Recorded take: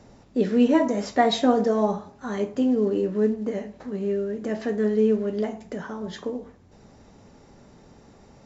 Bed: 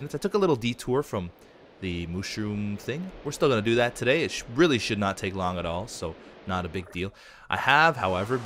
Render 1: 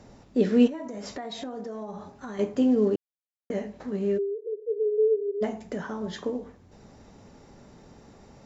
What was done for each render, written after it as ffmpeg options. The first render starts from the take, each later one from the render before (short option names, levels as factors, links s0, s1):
-filter_complex "[0:a]asettb=1/sr,asplit=3[s0][s1][s2];[s0]atrim=end=0.674[s3];[s1]atrim=start=0.67:end=2.39,asetpts=PTS-STARTPTS,afade=t=in:d=0.004:c=qsin,afade=t=out:st=1.716:d=0.004:c=qsin,acompressor=threshold=0.0224:ratio=8:attack=3.2:release=140:knee=1:detection=peak[s4];[s2]atrim=start=2.386[s5];[s3][s4]acrossfade=d=0.004:c1=hsin:c2=qsin[s6];[s6][s5]acrossfade=d=0.004:c1=qsin:c2=hsin,asplit=3[s7][s8][s9];[s7]afade=t=out:st=4.17:d=0.02[s10];[s8]asuperpass=centerf=430:order=12:qfactor=3.4,afade=t=in:st=4.17:d=0.02,afade=t=out:st=5.41:d=0.02[s11];[s9]afade=t=in:st=5.41:d=0.02[s12];[s10][s11][s12]amix=inputs=3:normalize=0,asplit=3[s13][s14][s15];[s13]atrim=end=2.96,asetpts=PTS-STARTPTS,afade=t=out:st=2.956:d=0.004:c=hsin[s16];[s14]atrim=start=2.96:end=3.5,asetpts=PTS-STARTPTS,volume=0[s17];[s15]atrim=start=3.5,asetpts=PTS-STARTPTS,afade=t=in:d=0.004:c=hsin[s18];[s16][s17][s18]concat=n=3:v=0:a=1"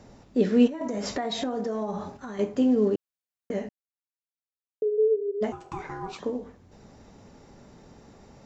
-filter_complex "[0:a]asettb=1/sr,asplit=3[s0][s1][s2];[s0]atrim=end=5.524[s3];[s1]atrim=start=5.52:end=6.2,asetpts=PTS-STARTPTS,afade=t=in:d=0.004:c=qsin,afade=t=out:st=0.676:d=0.004:c=qsin,aeval=exprs='val(0)*sin(2*PI*580*n/s)':c=same[s4];[s2]atrim=start=6.196[s5];[s3][s4]acrossfade=d=0.004:c1=hsin:c2=qsin[s6];[s6][s5]acrossfade=d=0.004:c1=qsin:c2=hsin,asplit=5[s7][s8][s9][s10][s11];[s7]atrim=end=0.812[s12];[s8]atrim=start=0.808:end=2.172,asetpts=PTS-STARTPTS,volume=2.11[s13];[s9]atrim=start=2.168:end=3.69,asetpts=PTS-STARTPTS,afade=t=out:st=1.518:d=0.004:c=hsin[s14];[s10]atrim=start=3.69:end=4.82,asetpts=PTS-STARTPTS,volume=0[s15];[s11]atrim=start=4.82,asetpts=PTS-STARTPTS,afade=t=in:d=0.004:c=hsin[s16];[s12][s13]acrossfade=d=0.004:c1=hsin:c2=hsin[s17];[s14][s15][s16]concat=n=3:v=0:a=1[s18];[s17][s18]acrossfade=d=0.004:c1=hsin:c2=hsin"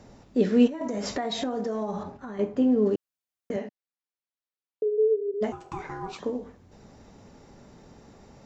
-filter_complex "[0:a]asettb=1/sr,asplit=3[s0][s1][s2];[s0]atrim=end=2.034[s3];[s1]atrim=start=2.03:end=2.86,asetpts=PTS-STARTPTS,afade=t=in:d=0.004:c=qsin,afade=t=out:st=0.826:d=0.004:c=qsin,lowpass=f=2000:p=1[s4];[s2]atrim=start=2.856[s5];[s3][s4]acrossfade=d=0.004:c1=hsin:c2=qsin[s6];[s6][s5]acrossfade=d=0.004:c1=qsin:c2=hsin,asettb=1/sr,asplit=3[s7][s8][s9];[s7]atrim=end=3.564[s10];[s8]atrim=start=3.56:end=5.34,asetpts=PTS-STARTPTS,afade=t=in:d=0.004:c=qsin,afade=t=out:st=1.776:d=0.004:c=qsin,highpass=190,lowpass=5000[s11];[s9]atrim=start=5.336[s12];[s10][s11]acrossfade=d=0.004:c1=hsin:c2=qsin[s13];[s13][s12]acrossfade=d=0.004:c1=qsin:c2=hsin"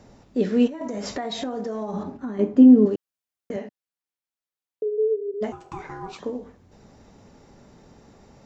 -filter_complex "[0:a]asettb=1/sr,asplit=3[s0][s1][s2];[s0]atrim=end=1.934[s3];[s1]atrim=start=1.93:end=2.86,asetpts=PTS-STARTPTS,afade=t=in:d=0.004:c=qsin,afade=t=out:st=0.926:d=0.004:c=qsin,equalizer=f=270:w=1.7:g=12[s4];[s2]atrim=start=2.856[s5];[s3][s4]acrossfade=d=0.004:c1=hsin:c2=qsin[s6];[s6][s5]acrossfade=d=0.004:c1=qsin:c2=hsin"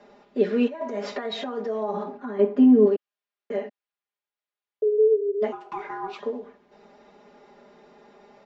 -filter_complex "[0:a]acrossover=split=280 4200:gain=0.0794 1 0.0794[s0][s1][s2];[s0][s1][s2]amix=inputs=3:normalize=0,aecho=1:1:4.9:0.94"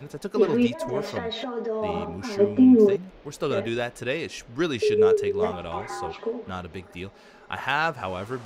-filter_complex "[1:a]volume=0.562[s0];[0:a][s0]amix=inputs=2:normalize=0"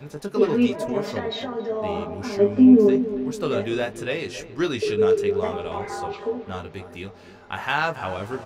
-filter_complex "[0:a]asplit=2[s0][s1];[s1]adelay=20,volume=0.501[s2];[s0][s2]amix=inputs=2:normalize=0,asplit=2[s3][s4];[s4]adelay=276,lowpass=f=1300:p=1,volume=0.251,asplit=2[s5][s6];[s6]adelay=276,lowpass=f=1300:p=1,volume=0.55,asplit=2[s7][s8];[s8]adelay=276,lowpass=f=1300:p=1,volume=0.55,asplit=2[s9][s10];[s10]adelay=276,lowpass=f=1300:p=1,volume=0.55,asplit=2[s11][s12];[s12]adelay=276,lowpass=f=1300:p=1,volume=0.55,asplit=2[s13][s14];[s14]adelay=276,lowpass=f=1300:p=1,volume=0.55[s15];[s3][s5][s7][s9][s11][s13][s15]amix=inputs=7:normalize=0"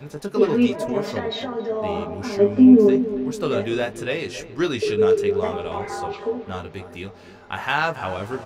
-af "volume=1.19"